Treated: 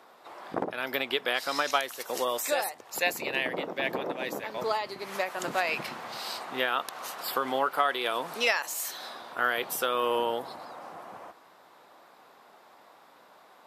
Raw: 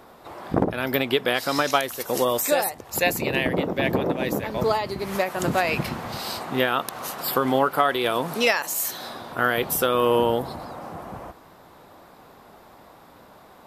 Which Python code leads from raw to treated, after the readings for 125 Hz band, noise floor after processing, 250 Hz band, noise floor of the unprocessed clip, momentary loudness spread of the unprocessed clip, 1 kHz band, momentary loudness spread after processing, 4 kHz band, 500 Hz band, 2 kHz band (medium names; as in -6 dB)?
-19.5 dB, -57 dBFS, -13.0 dB, -50 dBFS, 13 LU, -5.0 dB, 13 LU, -4.0 dB, -8.0 dB, -4.0 dB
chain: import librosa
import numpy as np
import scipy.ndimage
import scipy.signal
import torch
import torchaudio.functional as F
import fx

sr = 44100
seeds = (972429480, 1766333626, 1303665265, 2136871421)

y = fx.weighting(x, sr, curve='A')
y = y * librosa.db_to_amplitude(-5.0)